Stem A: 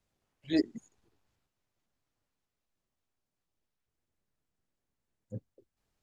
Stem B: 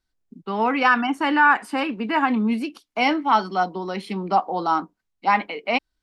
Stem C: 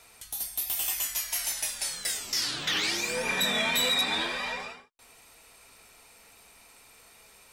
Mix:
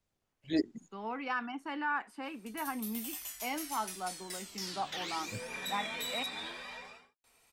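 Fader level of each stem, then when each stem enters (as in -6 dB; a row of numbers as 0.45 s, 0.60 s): -2.5 dB, -17.5 dB, -12.5 dB; 0.00 s, 0.45 s, 2.25 s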